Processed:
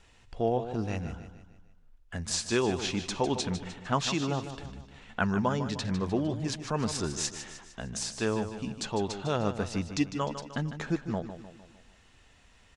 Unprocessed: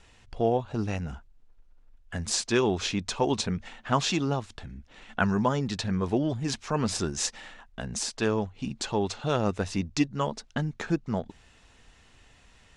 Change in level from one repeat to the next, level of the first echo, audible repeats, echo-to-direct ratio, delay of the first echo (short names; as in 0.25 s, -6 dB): -6.0 dB, -10.5 dB, 4, -9.5 dB, 0.152 s